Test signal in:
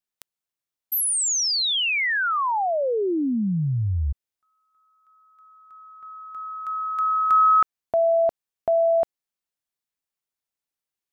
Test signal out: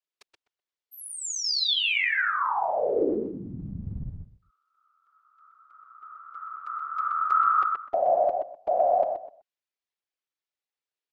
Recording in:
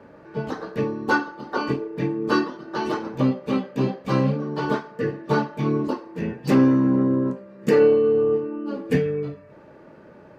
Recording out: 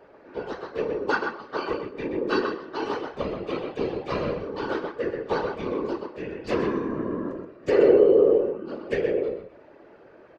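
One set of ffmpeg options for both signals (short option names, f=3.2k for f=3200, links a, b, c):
-filter_complex "[0:a]lowpass=4.6k,lowshelf=f=310:t=q:w=3:g=-6,asplit=2[a][b];[b]adelay=126,lowpass=f=3.1k:p=1,volume=-4.5dB,asplit=2[c][d];[d]adelay=126,lowpass=f=3.1k:p=1,volume=0.21,asplit=2[e][f];[f]adelay=126,lowpass=f=3.1k:p=1,volume=0.21[g];[a][c][e][g]amix=inputs=4:normalize=0,acrossover=split=1800[h][i];[i]acontrast=31[j];[h][j]amix=inputs=2:normalize=0,afftfilt=real='hypot(re,im)*cos(2*PI*random(0))':imag='hypot(re,im)*sin(2*PI*random(1))':win_size=512:overlap=0.75"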